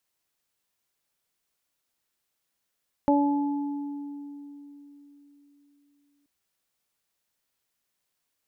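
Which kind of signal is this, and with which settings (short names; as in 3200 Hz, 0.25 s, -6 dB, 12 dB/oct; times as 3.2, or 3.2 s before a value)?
additive tone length 3.18 s, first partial 286 Hz, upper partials -2.5/-3.5 dB, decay 3.88 s, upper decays 0.63/1.97 s, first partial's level -19 dB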